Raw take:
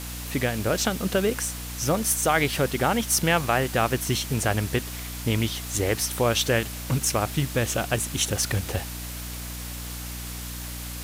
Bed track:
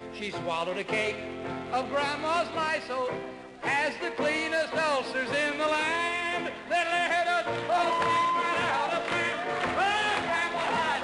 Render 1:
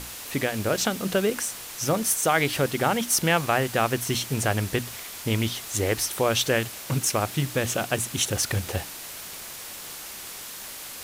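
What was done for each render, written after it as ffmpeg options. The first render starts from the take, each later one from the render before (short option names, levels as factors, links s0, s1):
-af "bandreject=f=60:t=h:w=6,bandreject=f=120:t=h:w=6,bandreject=f=180:t=h:w=6,bandreject=f=240:t=h:w=6,bandreject=f=300:t=h:w=6"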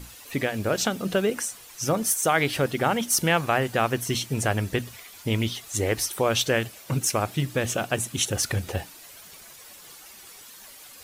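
-af "afftdn=nr=11:nf=-39"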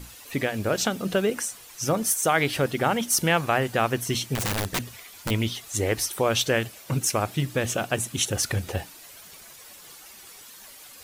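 -filter_complex "[0:a]asettb=1/sr,asplit=3[s0][s1][s2];[s0]atrim=end=4.354[s3];[s1]atrim=start=4.35:end=5.31,asetpts=PTS-STARTPTS,afade=t=in:d=0.004:c=qsin,afade=t=out:st=0.956:d=0.004:c=qsin,aeval=exprs='(mod(11.2*val(0)+1,2)-1)/11.2':c=same[s4];[s2]atrim=start=5.306[s5];[s3][s4]acrossfade=d=0.004:c1=hsin:c2=qsin[s6];[s6][s5]acrossfade=d=0.004:c1=qsin:c2=hsin"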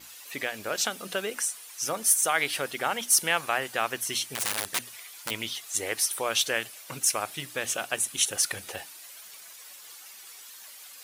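-af "highpass=f=1200:p=1,adynamicequalizer=threshold=0.00501:dfrequency=9700:dqfactor=4.4:tfrequency=9700:tqfactor=4.4:attack=5:release=100:ratio=0.375:range=3.5:mode=boostabove:tftype=bell"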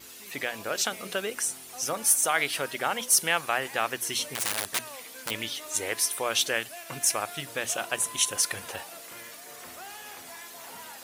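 -filter_complex "[1:a]volume=0.119[s0];[0:a][s0]amix=inputs=2:normalize=0"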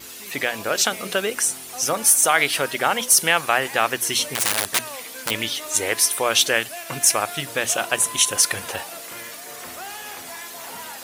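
-af "volume=2.51,alimiter=limit=0.708:level=0:latency=1"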